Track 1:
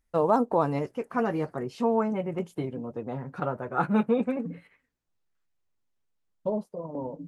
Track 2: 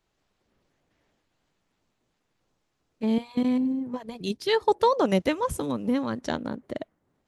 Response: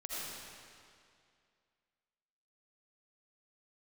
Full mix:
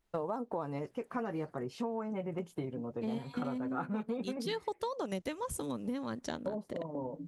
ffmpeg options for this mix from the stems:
-filter_complex "[0:a]volume=-3.5dB[a];[1:a]adynamicequalizer=threshold=0.00251:dfrequency=9200:dqfactor=0.72:tfrequency=9200:tqfactor=0.72:attack=5:release=100:ratio=0.375:range=3.5:mode=boostabove:tftype=bell,volume=-7dB[b];[a][b]amix=inputs=2:normalize=0,acompressor=threshold=-33dB:ratio=6"

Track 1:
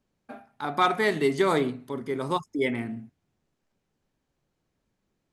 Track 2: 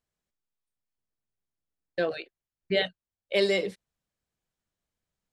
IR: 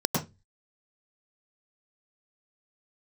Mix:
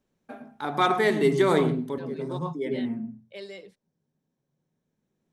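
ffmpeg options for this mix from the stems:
-filter_complex "[0:a]volume=-1dB,asplit=2[a][b];[b]volume=-19.5dB[c];[1:a]volume=-16.5dB,asplit=2[d][e];[e]apad=whole_len=234843[f];[a][f]sidechaincompress=threshold=-59dB:ratio=8:attack=6.9:release=1430[g];[2:a]atrim=start_sample=2205[h];[c][h]afir=irnorm=-1:irlink=0[i];[g][d][i]amix=inputs=3:normalize=0"

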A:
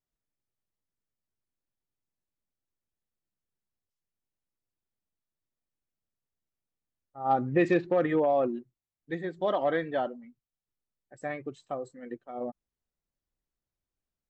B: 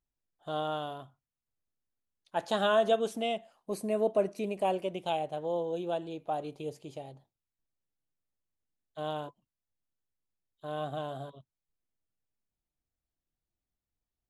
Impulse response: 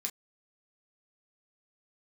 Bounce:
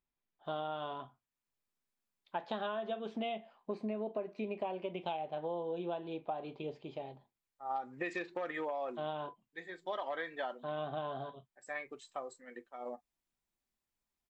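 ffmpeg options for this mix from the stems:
-filter_complex "[0:a]highpass=f=1.3k:p=1,adelay=450,volume=-0.5dB,asplit=2[a][b];[b]volume=-9.5dB[c];[1:a]lowpass=f=3.6k:w=0.5412,lowpass=f=3.6k:w=1.3066,volume=-2.5dB,asplit=3[d][e][f];[e]volume=-3dB[g];[f]apad=whole_len=650241[h];[a][h]sidechaincompress=threshold=-53dB:ratio=5:attack=16:release=592[i];[2:a]atrim=start_sample=2205[j];[c][g]amix=inputs=2:normalize=0[k];[k][j]afir=irnorm=-1:irlink=0[l];[i][d][l]amix=inputs=3:normalize=0,equalizer=f=960:w=3.5:g=4.5,acompressor=threshold=-34dB:ratio=12"

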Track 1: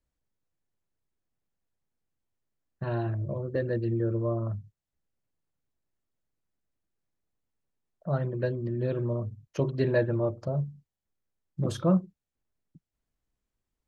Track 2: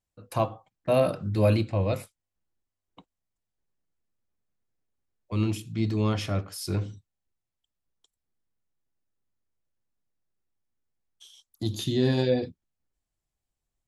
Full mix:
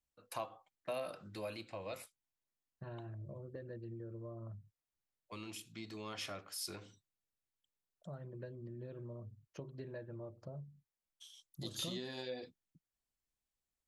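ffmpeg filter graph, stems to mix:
-filter_complex "[0:a]acompressor=threshold=-31dB:ratio=6,volume=-13dB[a];[1:a]acompressor=threshold=-26dB:ratio=6,highpass=f=980:p=1,volume=-5dB[b];[a][b]amix=inputs=2:normalize=0"

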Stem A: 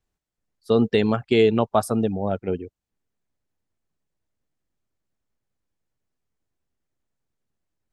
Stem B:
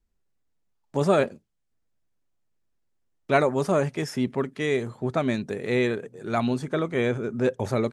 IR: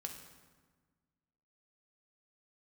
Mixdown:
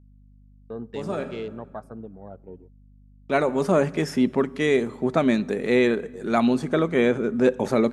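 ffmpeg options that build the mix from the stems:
-filter_complex "[0:a]afwtdn=0.0251,volume=-17.5dB,asplit=3[a][b][c];[b]volume=-14.5dB[d];[1:a]lowshelf=f=130:t=q:w=1.5:g=-13.5,adynamicequalizer=threshold=0.00708:dfrequency=4000:dqfactor=0.7:tfrequency=4000:tqfactor=0.7:attack=5:release=100:ratio=0.375:range=2:mode=cutabove:tftype=highshelf,volume=2dB,asplit=2[e][f];[f]volume=-11.5dB[g];[c]apad=whole_len=349327[h];[e][h]sidechaincompress=threshold=-55dB:ratio=8:attack=7.7:release=1020[i];[2:a]atrim=start_sample=2205[j];[d][g]amix=inputs=2:normalize=0[k];[k][j]afir=irnorm=-1:irlink=0[l];[a][i][l]amix=inputs=3:normalize=0,agate=range=-19dB:threshold=-51dB:ratio=16:detection=peak,aeval=exprs='val(0)+0.00282*(sin(2*PI*50*n/s)+sin(2*PI*2*50*n/s)/2+sin(2*PI*3*50*n/s)/3+sin(2*PI*4*50*n/s)/4+sin(2*PI*5*50*n/s)/5)':c=same"

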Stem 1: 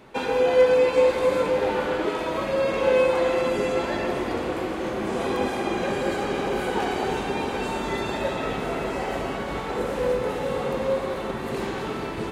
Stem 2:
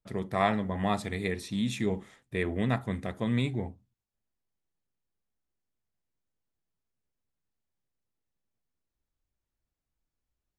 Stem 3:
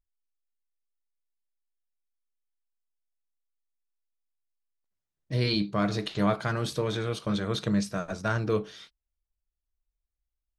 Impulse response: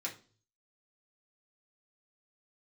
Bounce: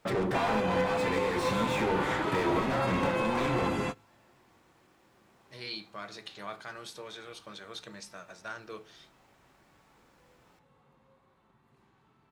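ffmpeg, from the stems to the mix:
-filter_complex "[0:a]equalizer=f=125:t=o:w=1:g=9,equalizer=f=500:t=o:w=1:g=-8,equalizer=f=1k:t=o:w=1:g=6,adelay=200,volume=-4dB[a];[1:a]acompressor=threshold=-33dB:ratio=6,asplit=2[b][c];[c]highpass=f=720:p=1,volume=41dB,asoftclip=type=tanh:threshold=-21dB[d];[b][d]amix=inputs=2:normalize=0,lowpass=f=1.1k:p=1,volume=-6dB,volume=-2.5dB,asplit=3[e][f][g];[f]volume=-3.5dB[h];[2:a]highpass=f=930:p=1,adelay=200,volume=-10dB,asplit=2[i][j];[j]volume=-8.5dB[k];[g]apad=whole_len=552073[l];[a][l]sidechaingate=range=-34dB:threshold=-52dB:ratio=16:detection=peak[m];[3:a]atrim=start_sample=2205[n];[h][k]amix=inputs=2:normalize=0[o];[o][n]afir=irnorm=-1:irlink=0[p];[m][e][i][p]amix=inputs=4:normalize=0,alimiter=limit=-18.5dB:level=0:latency=1:release=427"

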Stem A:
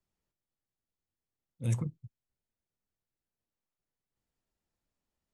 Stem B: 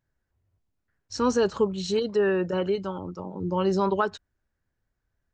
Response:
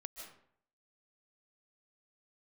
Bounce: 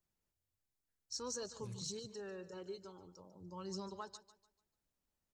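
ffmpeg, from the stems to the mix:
-filter_complex "[0:a]acompressor=threshold=-37dB:ratio=6,volume=-2.5dB[a];[1:a]aexciter=amount=5.2:drive=8.2:freq=4.2k,flanger=delay=0.3:depth=2.8:regen=47:speed=0.53:shape=triangular,volume=-18dB,asplit=3[b][c][d];[c]volume=-15dB[e];[d]apad=whole_len=235459[f];[a][f]sidechaincompress=threshold=-53dB:ratio=4:attack=16:release=226[g];[e]aecho=0:1:147|294|441|588|735:1|0.34|0.116|0.0393|0.0134[h];[g][b][h]amix=inputs=3:normalize=0"

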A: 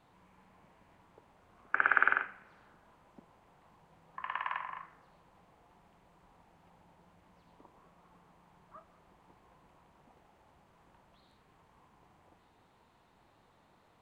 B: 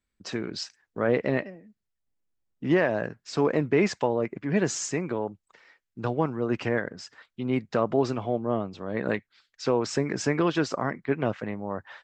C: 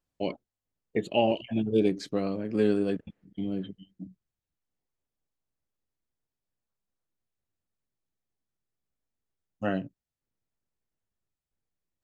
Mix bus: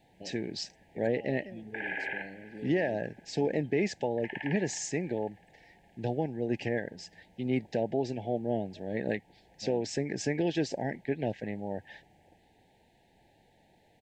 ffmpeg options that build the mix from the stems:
-filter_complex "[0:a]alimiter=limit=-19.5dB:level=0:latency=1:release=17,volume=3dB,asplit=2[a][b];[b]volume=-20dB[c];[1:a]volume=-3dB[d];[2:a]alimiter=limit=-20dB:level=0:latency=1,volume=-15.5dB[e];[c]aecho=0:1:358|716|1074|1432|1790|2148|2506|2864|3222:1|0.58|0.336|0.195|0.113|0.0656|0.0381|0.0221|0.0128[f];[a][d][e][f]amix=inputs=4:normalize=0,asuperstop=centerf=1200:order=12:qfactor=1.6,alimiter=limit=-18.5dB:level=0:latency=1:release=476"

